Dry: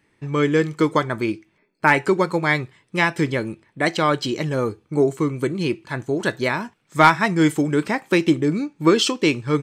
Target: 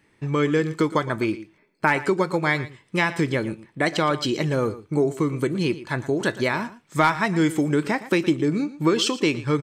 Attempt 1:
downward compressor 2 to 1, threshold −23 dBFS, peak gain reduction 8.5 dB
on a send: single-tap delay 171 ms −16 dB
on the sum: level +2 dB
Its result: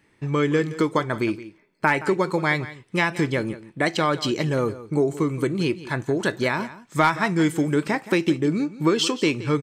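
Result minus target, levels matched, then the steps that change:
echo 56 ms late
change: single-tap delay 115 ms −16 dB

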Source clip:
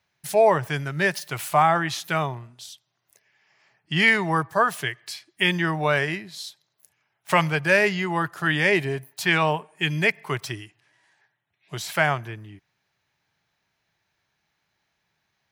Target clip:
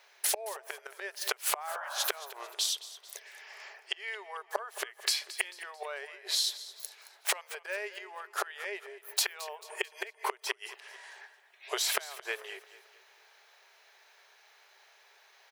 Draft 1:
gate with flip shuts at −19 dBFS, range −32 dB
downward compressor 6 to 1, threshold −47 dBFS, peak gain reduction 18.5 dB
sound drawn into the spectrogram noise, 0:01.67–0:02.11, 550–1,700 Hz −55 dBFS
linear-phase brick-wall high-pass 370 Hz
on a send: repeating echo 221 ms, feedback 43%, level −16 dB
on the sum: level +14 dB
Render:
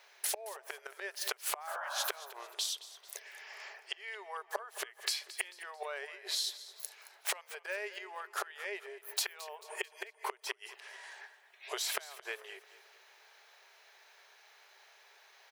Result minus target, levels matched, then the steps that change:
downward compressor: peak gain reduction +5.5 dB
change: downward compressor 6 to 1, threshold −40.5 dBFS, peak gain reduction 13 dB

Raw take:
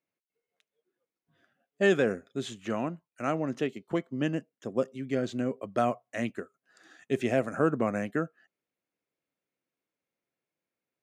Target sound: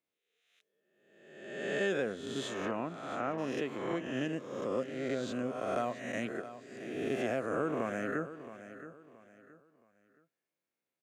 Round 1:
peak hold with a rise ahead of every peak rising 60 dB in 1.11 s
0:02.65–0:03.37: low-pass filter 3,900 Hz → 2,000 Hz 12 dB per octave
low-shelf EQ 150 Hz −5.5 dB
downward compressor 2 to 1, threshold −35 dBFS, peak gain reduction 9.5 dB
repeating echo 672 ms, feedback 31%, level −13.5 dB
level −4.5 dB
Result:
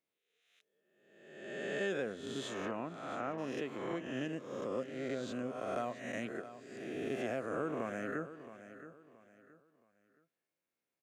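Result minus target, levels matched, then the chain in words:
downward compressor: peak gain reduction +4 dB
peak hold with a rise ahead of every peak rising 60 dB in 1.11 s
0:02.65–0:03.37: low-pass filter 3,900 Hz → 2,000 Hz 12 dB per octave
low-shelf EQ 150 Hz −5.5 dB
downward compressor 2 to 1, threshold −27 dBFS, peak gain reduction 5.5 dB
repeating echo 672 ms, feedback 31%, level −13.5 dB
level −4.5 dB

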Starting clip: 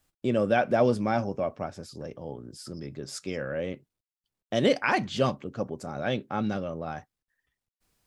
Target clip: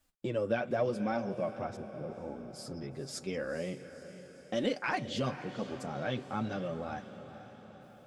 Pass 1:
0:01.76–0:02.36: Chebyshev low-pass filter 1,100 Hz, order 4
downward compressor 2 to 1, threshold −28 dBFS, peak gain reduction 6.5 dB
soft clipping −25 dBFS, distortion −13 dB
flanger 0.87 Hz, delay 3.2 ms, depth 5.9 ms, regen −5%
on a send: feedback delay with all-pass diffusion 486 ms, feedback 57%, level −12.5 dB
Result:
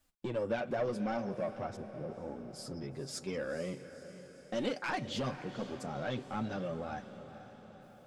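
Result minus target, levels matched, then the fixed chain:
soft clipping: distortion +16 dB
0:01.76–0:02.36: Chebyshev low-pass filter 1,100 Hz, order 4
downward compressor 2 to 1, threshold −28 dBFS, peak gain reduction 6.5 dB
soft clipping −14 dBFS, distortion −29 dB
flanger 0.87 Hz, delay 3.2 ms, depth 5.9 ms, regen −5%
on a send: feedback delay with all-pass diffusion 486 ms, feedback 57%, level −12.5 dB

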